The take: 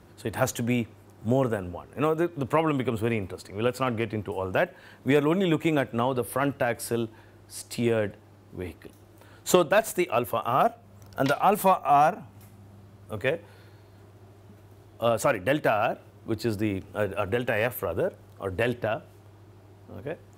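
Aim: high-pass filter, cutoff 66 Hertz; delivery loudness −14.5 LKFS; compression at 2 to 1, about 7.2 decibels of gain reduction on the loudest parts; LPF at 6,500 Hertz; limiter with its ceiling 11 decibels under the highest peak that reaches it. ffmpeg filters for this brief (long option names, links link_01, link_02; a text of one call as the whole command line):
ffmpeg -i in.wav -af "highpass=66,lowpass=6500,acompressor=threshold=-27dB:ratio=2,volume=19.5dB,alimiter=limit=-1.5dB:level=0:latency=1" out.wav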